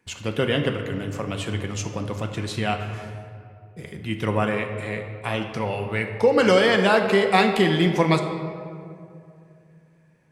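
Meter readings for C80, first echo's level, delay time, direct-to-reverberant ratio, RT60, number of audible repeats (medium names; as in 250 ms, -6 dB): 8.0 dB, no echo, no echo, 3.5 dB, 2.5 s, no echo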